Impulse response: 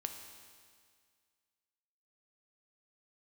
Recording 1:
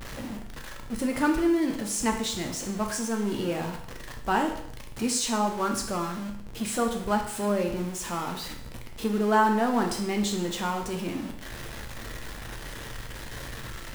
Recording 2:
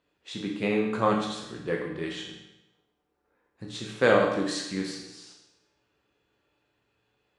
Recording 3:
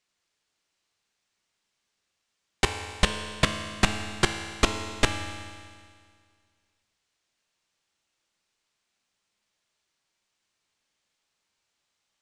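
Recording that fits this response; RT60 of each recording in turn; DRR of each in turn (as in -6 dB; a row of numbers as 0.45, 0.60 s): 3; 0.65, 0.90, 2.0 s; 2.5, -1.0, 5.0 dB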